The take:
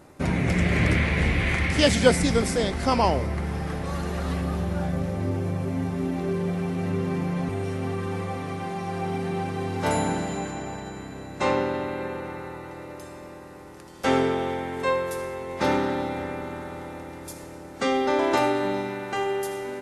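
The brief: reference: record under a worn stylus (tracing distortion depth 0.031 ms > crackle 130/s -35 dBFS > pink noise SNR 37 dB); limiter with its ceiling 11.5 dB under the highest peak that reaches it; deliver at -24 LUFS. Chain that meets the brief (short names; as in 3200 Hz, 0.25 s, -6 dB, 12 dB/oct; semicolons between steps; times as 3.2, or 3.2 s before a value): limiter -16 dBFS; tracing distortion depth 0.031 ms; crackle 130/s -35 dBFS; pink noise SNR 37 dB; gain +4 dB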